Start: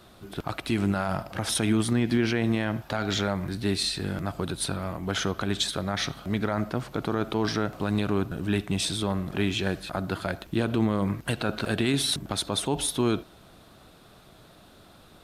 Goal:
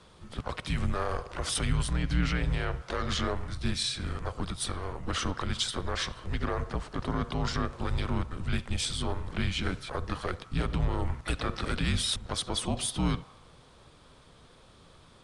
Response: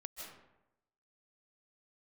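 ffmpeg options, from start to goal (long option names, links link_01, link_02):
-filter_complex "[0:a]asplit=2[link_01][link_02];[link_02]asetrate=58866,aresample=44100,atempo=0.749154,volume=-8dB[link_03];[link_01][link_03]amix=inputs=2:normalize=0,afreqshift=-180,asplit=2[link_04][link_05];[link_05]highpass=frequency=980:width_type=q:width=2.3[link_06];[1:a]atrim=start_sample=2205,lowpass=2200[link_07];[link_06][link_07]afir=irnorm=-1:irlink=0,volume=-17dB[link_08];[link_04][link_08]amix=inputs=2:normalize=0,aresample=22050,aresample=44100,volume=-3.5dB"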